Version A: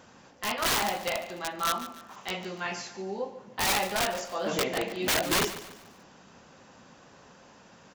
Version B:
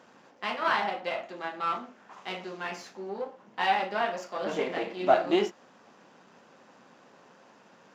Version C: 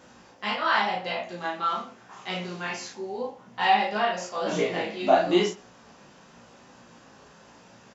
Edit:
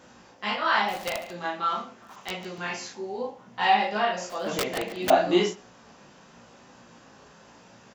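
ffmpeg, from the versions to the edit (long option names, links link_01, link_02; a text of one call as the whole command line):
ffmpeg -i take0.wav -i take1.wav -i take2.wav -filter_complex "[0:a]asplit=3[link_01][link_02][link_03];[2:a]asplit=4[link_04][link_05][link_06][link_07];[link_04]atrim=end=0.94[link_08];[link_01]atrim=start=0.88:end=1.37[link_09];[link_05]atrim=start=1.31:end=2.022[link_10];[link_02]atrim=start=2.018:end=2.582[link_11];[link_06]atrim=start=2.578:end=4.302[link_12];[link_03]atrim=start=4.298:end=5.102[link_13];[link_07]atrim=start=5.098[link_14];[link_08][link_09]acrossfade=duration=0.06:curve1=tri:curve2=tri[link_15];[link_15][link_10]acrossfade=duration=0.06:curve1=tri:curve2=tri[link_16];[link_16][link_11]acrossfade=duration=0.004:curve1=hsin:curve2=hsin[link_17];[link_17][link_12]acrossfade=duration=0.004:curve1=hsin:curve2=hsin[link_18];[link_18][link_13]acrossfade=duration=0.004:curve1=hsin:curve2=hsin[link_19];[link_19][link_14]acrossfade=duration=0.004:curve1=hsin:curve2=hsin" out.wav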